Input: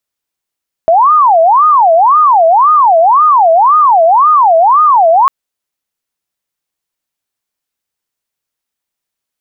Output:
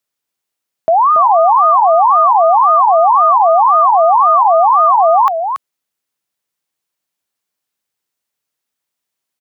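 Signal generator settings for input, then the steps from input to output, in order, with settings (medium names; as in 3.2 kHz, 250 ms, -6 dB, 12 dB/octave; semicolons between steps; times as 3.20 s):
siren wail 649–1240 Hz 1.9 per s sine -3.5 dBFS 4.40 s
high-pass 95 Hz; peak limiter -6.5 dBFS; on a send: delay 281 ms -7.5 dB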